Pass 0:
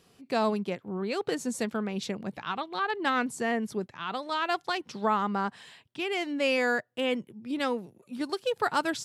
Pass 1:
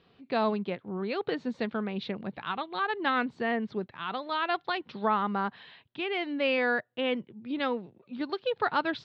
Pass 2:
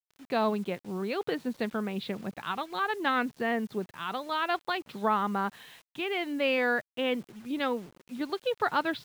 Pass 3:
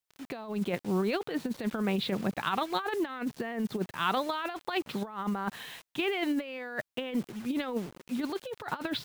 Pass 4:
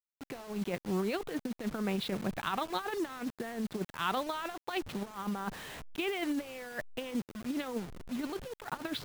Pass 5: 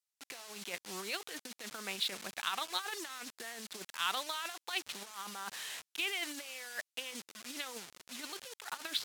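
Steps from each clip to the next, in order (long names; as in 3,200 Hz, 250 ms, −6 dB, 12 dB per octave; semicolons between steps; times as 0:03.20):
Chebyshev low-pass filter 4,000 Hz, order 4
bit reduction 9 bits
compressor whose output falls as the input rises −33 dBFS, ratio −0.5; level +2.5 dB
hold until the input has moved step −40.5 dBFS; level −3.5 dB
resonant band-pass 7,000 Hz, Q 0.57; level +8 dB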